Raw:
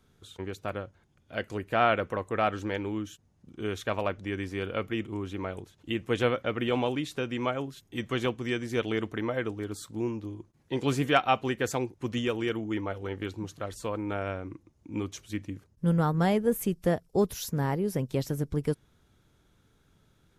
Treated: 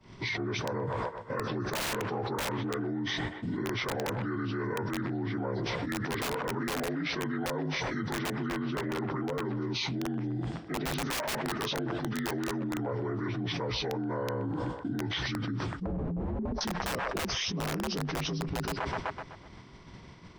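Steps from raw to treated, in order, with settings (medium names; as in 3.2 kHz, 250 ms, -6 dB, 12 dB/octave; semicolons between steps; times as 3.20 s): frequency axis rescaled in octaves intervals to 80%; expander -56 dBFS; integer overflow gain 22.5 dB; 8.46–9.45 s: treble shelf 4.2 kHz -11.5 dB; feedback echo behind a band-pass 126 ms, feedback 40%, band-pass 1.1 kHz, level -19 dB; 15.70–16.61 s: low-pass that closes with the level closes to 340 Hz, closed at -25.5 dBFS; level flattener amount 100%; trim -6 dB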